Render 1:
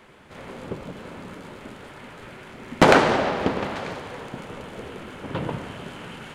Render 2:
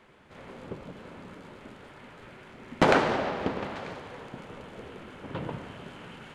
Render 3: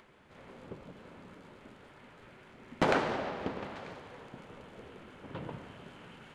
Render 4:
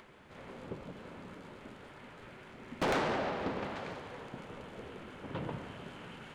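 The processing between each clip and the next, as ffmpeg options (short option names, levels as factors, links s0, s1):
-af "highshelf=f=8300:g=-8.5,volume=0.473"
-af "acompressor=mode=upward:threshold=0.00355:ratio=2.5,volume=0.473"
-af "asoftclip=type=tanh:threshold=0.0299,volume=1.5"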